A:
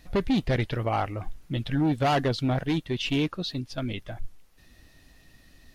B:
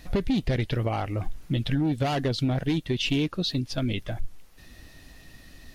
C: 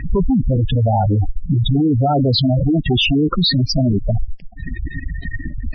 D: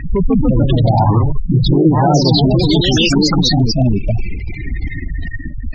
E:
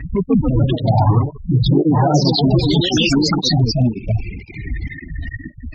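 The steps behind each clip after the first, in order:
compressor, threshold -28 dBFS, peak gain reduction 7.5 dB; dynamic EQ 1100 Hz, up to -6 dB, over -46 dBFS, Q 0.74; gain +6.5 dB
fuzz box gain 44 dB, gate -50 dBFS; thin delay 89 ms, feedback 63%, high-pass 3100 Hz, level -18 dB; spectral gate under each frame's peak -10 dB strong; gain +1 dB
echoes that change speed 0.163 s, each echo +2 st, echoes 3; gain +1 dB
tape flanging out of phase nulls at 1.9 Hz, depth 5.8 ms

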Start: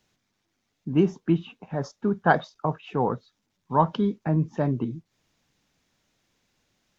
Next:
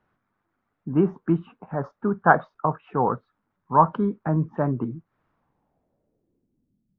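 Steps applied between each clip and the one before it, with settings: low-pass sweep 1300 Hz -> 190 Hz, 5.28–6.89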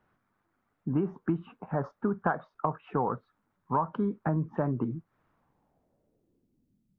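compressor 12:1, threshold -24 dBFS, peak gain reduction 15.5 dB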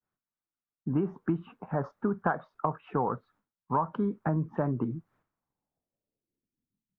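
expander -60 dBFS

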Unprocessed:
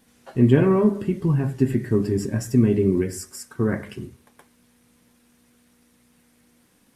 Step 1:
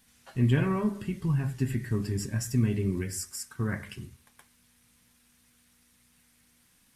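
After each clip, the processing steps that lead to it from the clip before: bell 400 Hz -14 dB 2.5 oct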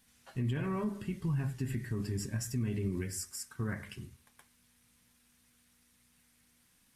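limiter -22 dBFS, peak gain reduction 10 dB; gain -4 dB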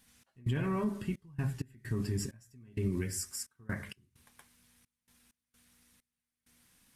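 step gate "x.xxx.x.xx..xxx." 65 bpm -24 dB; gain +2 dB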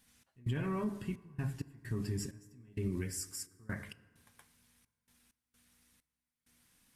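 FDN reverb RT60 2 s, low-frequency decay 1×, high-frequency decay 0.45×, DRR 17.5 dB; gain -3 dB

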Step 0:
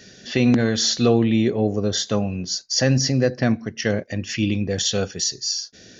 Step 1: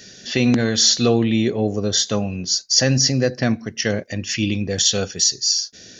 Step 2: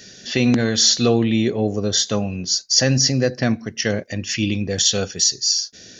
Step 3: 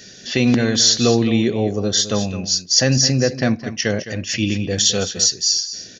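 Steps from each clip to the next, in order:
high shelf 3500 Hz +8.5 dB
nothing audible
echo 0.212 s -12.5 dB; gain +1 dB

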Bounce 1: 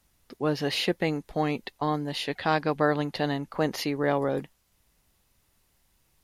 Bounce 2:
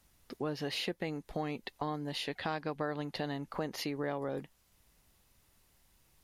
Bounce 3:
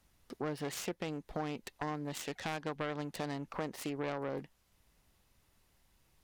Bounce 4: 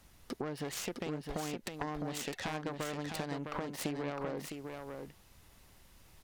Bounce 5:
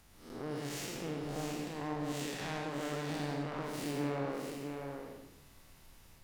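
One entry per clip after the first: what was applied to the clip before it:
compressor 3:1, threshold -36 dBFS, peak gain reduction 13 dB
self-modulated delay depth 0.28 ms; high shelf 5500 Hz -5 dB; gain -1 dB
compressor, threshold -45 dBFS, peak gain reduction 12.5 dB; echo 0.658 s -5.5 dB; gain +9 dB
time blur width 0.159 s; reverb RT60 0.75 s, pre-delay 79 ms, DRR 3 dB; gain +1 dB

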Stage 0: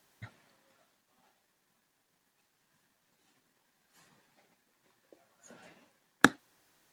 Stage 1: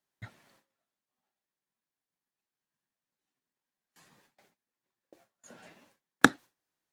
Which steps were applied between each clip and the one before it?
gate with hold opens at -55 dBFS; gain +2 dB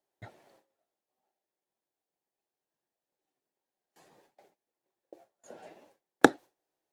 band shelf 520 Hz +11 dB; gain -3.5 dB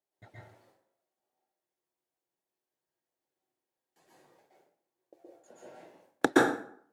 plate-style reverb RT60 0.58 s, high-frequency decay 0.7×, pre-delay 0.11 s, DRR -6 dB; gain -7.5 dB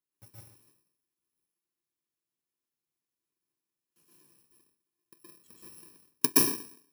FFT order left unsorted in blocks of 64 samples

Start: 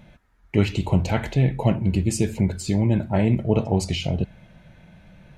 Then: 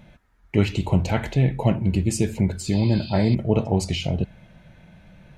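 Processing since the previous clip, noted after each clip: spectral repair 2.74–3.32, 2400–5100 Hz before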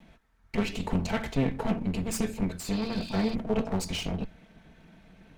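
minimum comb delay 4.5 ms; gain -3.5 dB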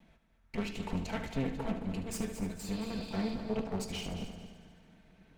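multi-head echo 73 ms, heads first and third, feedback 53%, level -11 dB; gain -7.5 dB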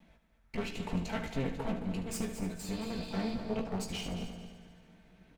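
doubler 17 ms -7 dB

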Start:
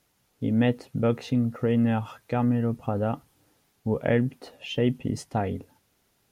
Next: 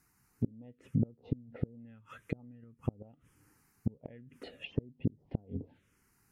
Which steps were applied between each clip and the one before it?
flipped gate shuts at -17 dBFS, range -30 dB; envelope phaser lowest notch 570 Hz, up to 3900 Hz, full sweep at -31 dBFS; treble ducked by the level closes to 370 Hz, closed at -34 dBFS; gain +1 dB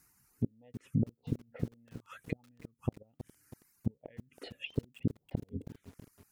reverb removal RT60 1.8 s; high shelf 3700 Hz +7.5 dB; lo-fi delay 0.323 s, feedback 55%, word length 8-bit, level -12 dB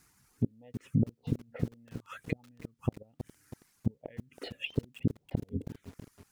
median filter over 3 samples; in parallel at -2.5 dB: limiter -26 dBFS, peak gain reduction 8.5 dB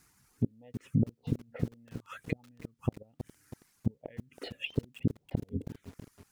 nothing audible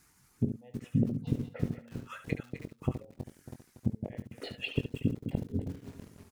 reverse delay 0.152 s, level -8.5 dB; on a send: early reflections 22 ms -9.5 dB, 72 ms -10 dB

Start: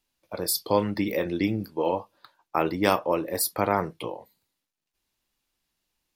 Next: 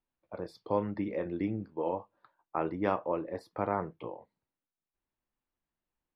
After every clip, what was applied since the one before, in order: LPF 1600 Hz 12 dB/oct; gain -7 dB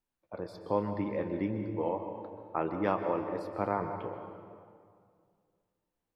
reverb RT60 2.2 s, pre-delay 0.118 s, DRR 6.5 dB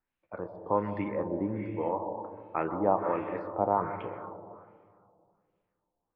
LFO low-pass sine 1.3 Hz 770–2700 Hz

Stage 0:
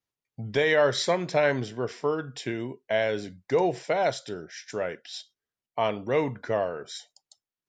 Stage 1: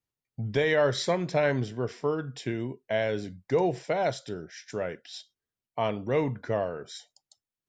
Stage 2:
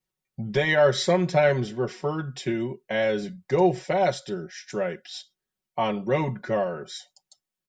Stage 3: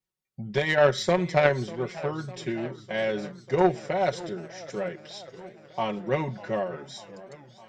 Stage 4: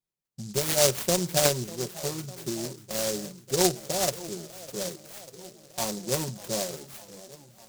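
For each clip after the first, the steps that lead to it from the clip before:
low shelf 250 Hz +8.5 dB; gain -3.5 dB
comb 5.4 ms, depth 92%; gain +1.5 dB
added harmonics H 3 -14 dB, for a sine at -7 dBFS; warbling echo 0.6 s, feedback 70%, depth 168 cents, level -18 dB; gain +3.5 dB
noise-modulated delay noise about 5900 Hz, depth 0.2 ms; gain -2 dB

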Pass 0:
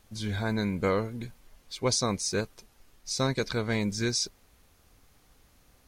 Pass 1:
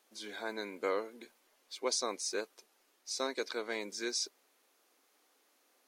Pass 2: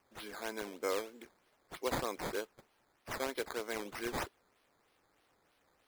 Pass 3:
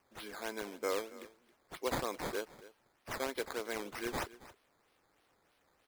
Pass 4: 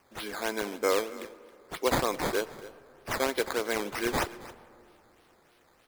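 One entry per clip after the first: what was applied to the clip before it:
inverse Chebyshev high-pass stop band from 150 Hz, stop band 40 dB; gain -6 dB
decimation with a swept rate 11×, swing 100% 3.2 Hz; gain -1.5 dB
echo 0.273 s -18 dB
reverb RT60 2.9 s, pre-delay 15 ms, DRR 18.5 dB; gain +9 dB

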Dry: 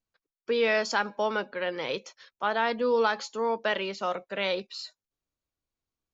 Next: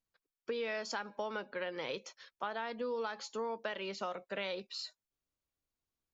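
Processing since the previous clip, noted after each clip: compressor, threshold -32 dBFS, peak gain reduction 11.5 dB; gain -3 dB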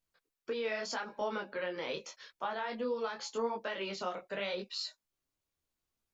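in parallel at -2.5 dB: limiter -33 dBFS, peak gain reduction 9 dB; on the sum: detuned doubles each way 29 cents; gain +2 dB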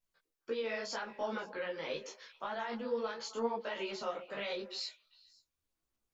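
chorus voices 6, 1.4 Hz, delay 16 ms, depth 3.2 ms; delay with a stepping band-pass 0.133 s, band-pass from 390 Hz, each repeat 1.4 oct, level -11 dB; gain +1 dB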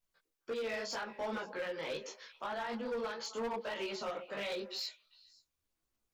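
overloaded stage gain 34.5 dB; gain +1 dB

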